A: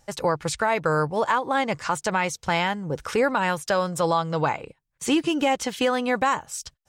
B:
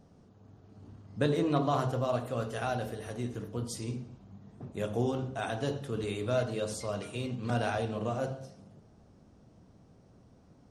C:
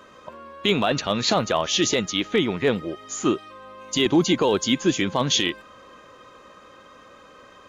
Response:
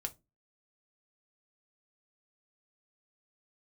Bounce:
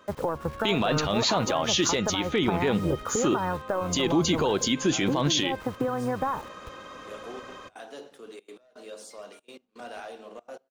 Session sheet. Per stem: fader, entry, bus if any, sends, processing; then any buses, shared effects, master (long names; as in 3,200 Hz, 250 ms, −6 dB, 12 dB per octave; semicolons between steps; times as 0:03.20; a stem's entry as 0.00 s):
+2.5 dB, 0.00 s, bus A, no send, sub-octave generator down 1 octave, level −5 dB; low-pass filter 1,400 Hz 24 dB per octave; bit reduction 8 bits
−13.5 dB, 2.30 s, bus A, send −20.5 dB, Bessel high-pass filter 380 Hz, order 6; leveller curve on the samples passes 2; gate pattern "x.x..xxxxxx" 165 BPM −24 dB
−9.0 dB, 0.00 s, no bus, send −9 dB, automatic gain control gain up to 12 dB
bus A: 0.0 dB, downward compressor 10 to 1, threshold −24 dBFS, peak gain reduction 11 dB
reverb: on, pre-delay 3 ms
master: brickwall limiter −15 dBFS, peak gain reduction 8.5 dB